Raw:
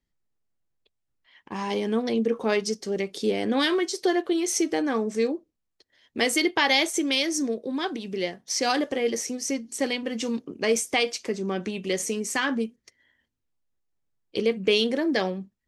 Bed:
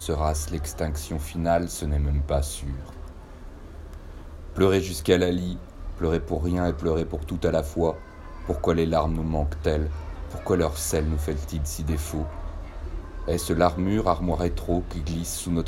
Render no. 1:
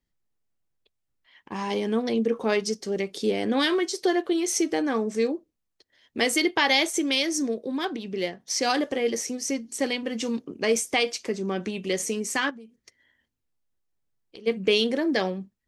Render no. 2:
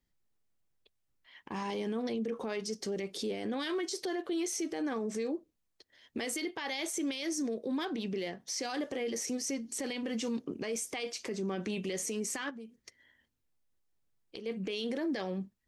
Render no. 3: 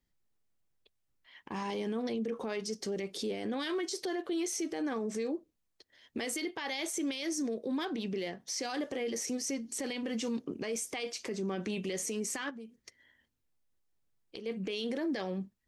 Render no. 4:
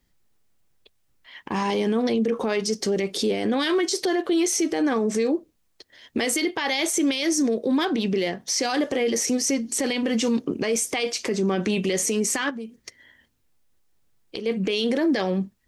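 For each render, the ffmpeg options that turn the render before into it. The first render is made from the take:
-filter_complex "[0:a]asettb=1/sr,asplit=3[s0][s1][s2];[s0]atrim=end=7.774[s3];[s1]atrim=start=7.77:end=8.41,asetpts=PTS-STARTPTS,afade=t=in:d=0.004:c=qsin,afade=t=out:st=0.636:d=0.004:c=qsin,adynamicsmooth=sensitivity=6.5:basefreq=6100[s4];[s2]atrim=start=8.406[s5];[s3][s4]acrossfade=d=0.004:c1=hsin:c2=qsin[s6];[s6][s5]acrossfade=d=0.004:c1=qsin:c2=hsin,asplit=3[s7][s8][s9];[s7]afade=t=out:st=12.49:d=0.02[s10];[s8]acompressor=threshold=0.00891:ratio=10:attack=3.2:release=140:knee=1:detection=peak,afade=t=in:st=12.49:d=0.02,afade=t=out:st=14.46:d=0.02[s11];[s9]afade=t=in:st=14.46:d=0.02[s12];[s10][s11][s12]amix=inputs=3:normalize=0"
-af "acompressor=threshold=0.0355:ratio=3,alimiter=level_in=1.5:limit=0.0631:level=0:latency=1:release=19,volume=0.668"
-af anull
-af "volume=3.98"

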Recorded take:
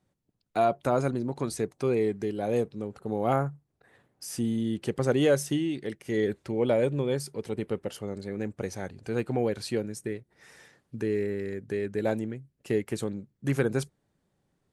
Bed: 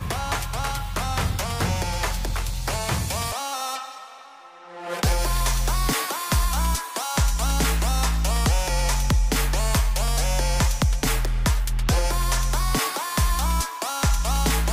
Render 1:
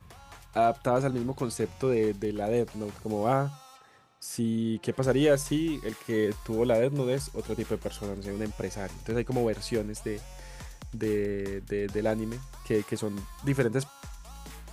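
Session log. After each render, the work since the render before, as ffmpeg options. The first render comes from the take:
-filter_complex "[1:a]volume=0.0708[s0];[0:a][s0]amix=inputs=2:normalize=0"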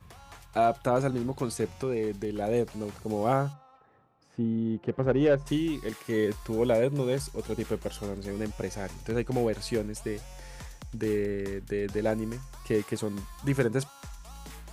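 -filter_complex "[0:a]asettb=1/sr,asplit=3[s0][s1][s2];[s0]atrim=end=1.764[s3];[s1]atrim=start=1.76:end=2.34,asetpts=PTS-STARTPTS,afade=t=in:d=0.004:c=qsin,afade=t=out:st=0.576:d=0.004:c=qsin,acompressor=threshold=0.0398:ratio=2:attack=3.2:release=140:knee=1:detection=peak[s4];[s2]atrim=start=2.336[s5];[s3][s4]acrossfade=d=0.004:c1=hsin:c2=qsin[s6];[s6][s5]acrossfade=d=0.004:c1=qsin:c2=hsin,asplit=3[s7][s8][s9];[s7]afade=t=out:st=3.52:d=0.02[s10];[s8]adynamicsmooth=sensitivity=1:basefreq=1300,afade=t=in:st=3.52:d=0.02,afade=t=out:st=5.46:d=0.02[s11];[s9]afade=t=in:st=5.46:d=0.02[s12];[s10][s11][s12]amix=inputs=3:normalize=0,asettb=1/sr,asplit=3[s13][s14][s15];[s13]atrim=end=12.094[s16];[s14]atrim=start=12.09:end=12.53,asetpts=PTS-STARTPTS,afade=t=in:d=0.004:c=qsin,afade=t=out:st=0.436:d=0.004:c=qsin,equalizer=f=3700:w=5.5:g=-8.5[s17];[s15]atrim=start=12.526[s18];[s16][s17]acrossfade=d=0.004:c1=hsin:c2=qsin[s19];[s19][s18]acrossfade=d=0.004:c1=qsin:c2=hsin"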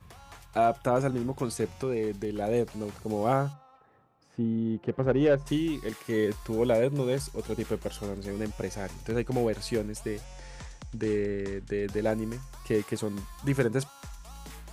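-filter_complex "[0:a]asettb=1/sr,asplit=3[s0][s1][s2];[s0]atrim=end=0.574[s3];[s1]atrim=start=0.57:end=1.45,asetpts=PTS-STARTPTS,afade=t=in:d=0.004:c=qsin,afade=t=out:st=0.876:d=0.004:c=qsin,bandreject=f=4100:w=6.5[s4];[s2]atrim=start=1.446[s5];[s3][s4]acrossfade=d=0.004:c1=hsin:c2=qsin[s6];[s6][s5]acrossfade=d=0.004:c1=qsin:c2=hsin,asettb=1/sr,asplit=3[s7][s8][s9];[s7]atrim=end=10.244[s10];[s8]atrim=start=10.24:end=11.83,asetpts=PTS-STARTPTS,afade=t=in:d=0.004:c=qsin,afade=t=out:st=1.586:d=0.004:c=qsin,lowpass=f=8600:w=0.5412,lowpass=f=8600:w=1.3066[s11];[s9]atrim=start=11.826[s12];[s10][s11]acrossfade=d=0.004:c1=hsin:c2=qsin[s13];[s13][s12]acrossfade=d=0.004:c1=qsin:c2=hsin"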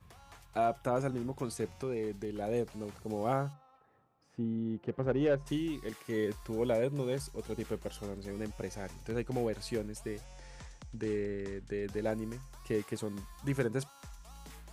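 -af "volume=0.501"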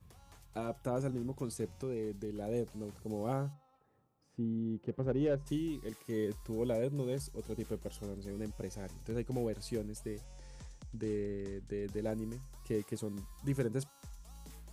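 -af "equalizer=f=1600:t=o:w=2.9:g=-8.5,bandreject=f=690:w=19"

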